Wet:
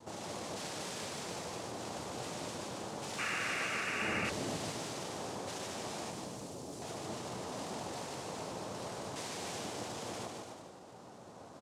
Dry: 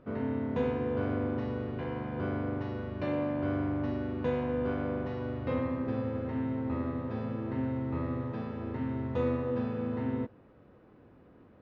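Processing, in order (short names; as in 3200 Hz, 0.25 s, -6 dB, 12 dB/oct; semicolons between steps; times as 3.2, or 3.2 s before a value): wavefolder -35 dBFS; limiter -42 dBFS, peak gain reduction 7 dB; noise vocoder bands 2; 4.02–4.57 low shelf 480 Hz +10 dB; flange 1 Hz, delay 8.8 ms, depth 2.7 ms, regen -68%; 6.1–6.82 bell 1900 Hz -12.5 dB 2.6 oct; bouncing-ball echo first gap 0.15 s, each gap 0.8×, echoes 5; 3.18–4.3 painted sound noise 1100–2900 Hz -45 dBFS; gain +7.5 dB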